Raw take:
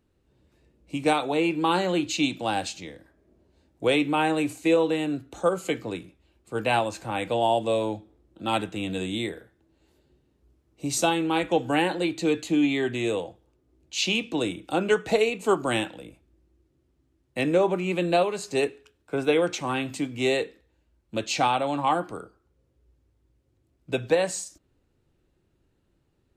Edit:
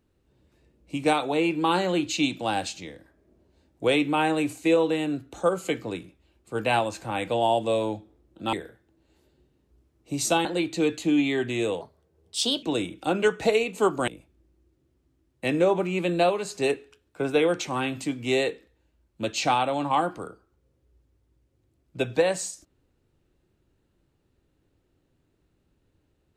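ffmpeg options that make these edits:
-filter_complex "[0:a]asplit=6[a][b][c][d][e][f];[a]atrim=end=8.532[g];[b]atrim=start=9.248:end=11.172[h];[c]atrim=start=11.898:end=13.264[i];[d]atrim=start=13.26:end=14.29,asetpts=PTS-STARTPTS,asetrate=55566,aresample=44100[j];[e]atrim=start=14.286:end=15.742[k];[f]atrim=start=16.008[l];[g][h]acrossfade=d=0.004:c1=hsin:c2=hsin[m];[m][i]acrossfade=d=0.004:c1=hsin:c2=hsin[n];[n][j]acrossfade=d=0.004:c1=hsin:c2=hsin[o];[o][k]acrossfade=d=0.004:c1=hsin:c2=hsin[p];[p][l]acrossfade=d=0.004:c1=hsin:c2=hsin"

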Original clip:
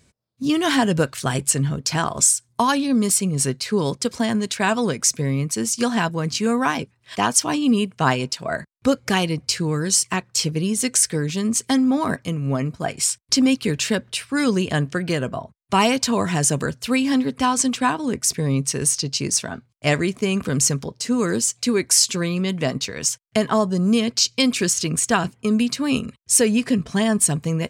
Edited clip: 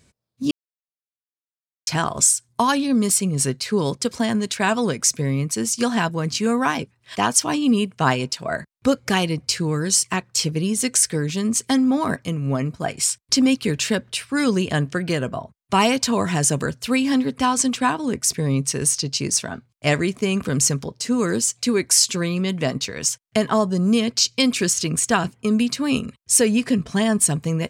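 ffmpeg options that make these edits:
-filter_complex "[0:a]asplit=3[a][b][c];[a]atrim=end=0.51,asetpts=PTS-STARTPTS,afade=t=out:st=0.506:d=0.004:c=hsin[d];[b]atrim=start=0.51:end=1.87,asetpts=PTS-STARTPTS,volume=0[e];[c]atrim=start=1.87,asetpts=PTS-STARTPTS,afade=t=in:d=0.004:c=hsin[f];[d][e][f]concat=n=3:v=0:a=1"

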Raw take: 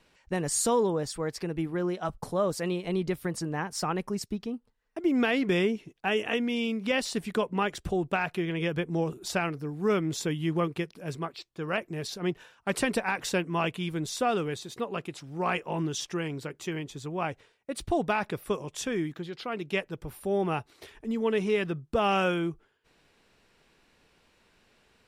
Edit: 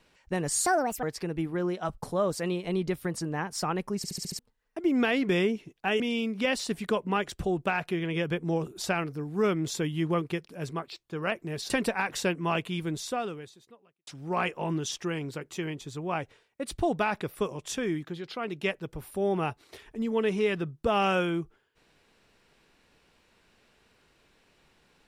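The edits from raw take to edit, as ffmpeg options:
-filter_complex "[0:a]asplit=12[a][b][c][d][e][f][g][h][i][j][k][l];[a]atrim=end=0.664[m];[b]atrim=start=0.66:end=1.23,asetpts=PTS-STARTPTS,asetrate=67914,aresample=44100[n];[c]atrim=start=1.226:end=4.242[o];[d]atrim=start=4.168:end=4.242[p];[e]atrim=start=4.168:end=4.242[q];[f]atrim=start=4.168:end=4.242[r];[g]atrim=start=4.168:end=4.242[s];[h]atrim=start=4.168:end=4.242[t];[i]atrim=start=4.588:end=6.202[u];[j]atrim=start=6.458:end=12.162[v];[k]atrim=start=12.788:end=15.16,asetpts=PTS-STARTPTS,afade=t=out:st=1.202:d=1.17:c=qua[w];[l]atrim=start=15.16,asetpts=PTS-STARTPTS,afade=t=in:d=0.004:c=hsin[x];[m][n]acrossfade=d=0.004:c1=hsin:c2=hsin[y];[y][o]acrossfade=d=0.004:c1=hsin:c2=hsin[z];[z][p]acrossfade=d=0.004:c1=hsin:c2=hsin[aa];[aa][q]acrossfade=d=0.004:c1=hsin:c2=hsin[ab];[ab][r]acrossfade=d=0.004:c1=hsin:c2=hsin[ac];[ac][s]acrossfade=d=0.004:c1=hsin:c2=hsin[ad];[ad][t]acrossfade=d=0.004:c1=hsin:c2=hsin[ae];[ae][u]acrossfade=d=0.004:c1=hsin:c2=hsin[af];[af][v]acrossfade=d=0.004:c1=hsin:c2=hsin[ag];[w][x]concat=n=2:v=0:a=1[ah];[ag][ah]acrossfade=d=0.004:c1=hsin:c2=hsin"

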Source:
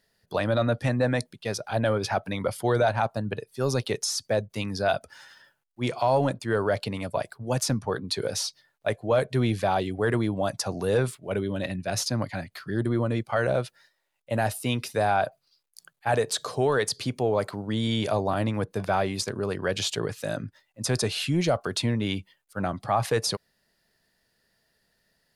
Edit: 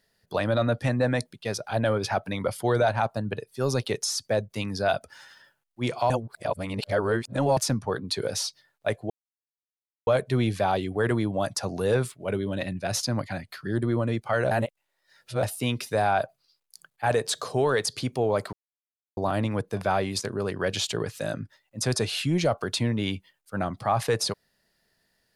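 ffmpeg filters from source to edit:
-filter_complex "[0:a]asplit=8[a][b][c][d][e][f][g][h];[a]atrim=end=6.102[i];[b]atrim=start=6.098:end=7.572,asetpts=PTS-STARTPTS,areverse[j];[c]atrim=start=7.568:end=9.1,asetpts=PTS-STARTPTS,afade=t=out:st=1.528:d=0.004:c=hsin,apad=pad_dur=0.97[k];[d]atrim=start=9.1:end=13.542,asetpts=PTS-STARTPTS,afade=t=in:d=0.004:c=hsin[l];[e]atrim=start=13.538:end=14.462,asetpts=PTS-STARTPTS,areverse[m];[f]atrim=start=14.458:end=17.56,asetpts=PTS-STARTPTS,afade=t=out:st=3.098:d=0.004:c=hsin[n];[g]atrim=start=17.56:end=18.2,asetpts=PTS-STARTPTS,volume=0[o];[h]atrim=start=18.2,asetpts=PTS-STARTPTS,afade=t=in:d=0.004:c=hsin[p];[i][j]acrossfade=d=0.004:c1=hsin:c2=hsin[q];[k][l]concat=n=2:v=0:a=1[r];[q][r]acrossfade=d=0.004:c1=hsin:c2=hsin[s];[s][m]acrossfade=d=0.004:c1=hsin:c2=hsin[t];[n][o][p]concat=n=3:v=0:a=1[u];[t][u]acrossfade=d=0.004:c1=hsin:c2=hsin"

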